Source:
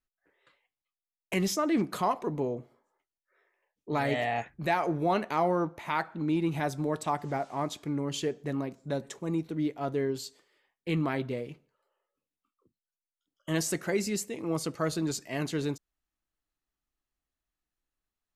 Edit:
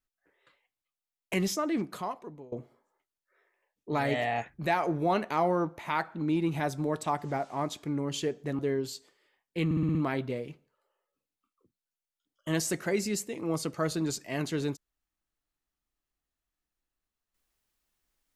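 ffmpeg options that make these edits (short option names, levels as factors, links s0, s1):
-filter_complex "[0:a]asplit=8[s0][s1][s2][s3][s4][s5][s6][s7];[s0]atrim=end=2.52,asetpts=PTS-STARTPTS,afade=t=out:st=1.35:d=1.17:silence=0.0707946[s8];[s1]atrim=start=2.52:end=8.592,asetpts=PTS-STARTPTS,afade=t=in:d=0.004:c=hsin:silence=0.0707946[s9];[s2]atrim=start=9.898:end=11.022[s10];[s3]atrim=start=10.958:end=11.022[s11];[s4]atrim=start=10.958:end=11.022[s12];[s5]atrim=start=10.958:end=11.022[s13];[s6]atrim=start=10.958:end=11.022[s14];[s7]atrim=start=10.958[s15];[s8][s9]concat=n=2:v=0:a=1[s16];[s16][s10]acrossfade=d=0.004:c1=hsin:c2=hsin[s17];[s17][s11]acrossfade=d=0.004:c1=hsin:c2=hsin[s18];[s18][s12]acrossfade=d=0.004:c1=hsin:c2=hsin[s19];[s19][s13]acrossfade=d=0.004:c1=hsin:c2=hsin[s20];[s20][s14]acrossfade=d=0.004:c1=hsin:c2=hsin[s21];[s21][s15]acrossfade=d=0.004:c1=hsin:c2=hsin"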